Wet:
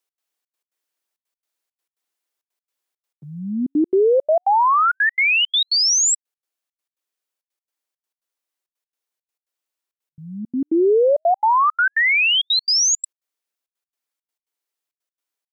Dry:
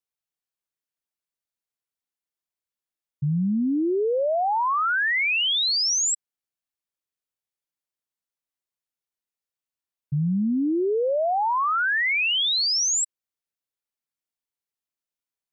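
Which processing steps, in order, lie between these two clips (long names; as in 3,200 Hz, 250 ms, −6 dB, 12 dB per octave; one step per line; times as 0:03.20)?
high-pass filter 290 Hz 24 dB per octave
in parallel at +2 dB: speech leveller
on the sum: gate pattern "x.xxx.x.xxxxx." 168 BPM −60 dB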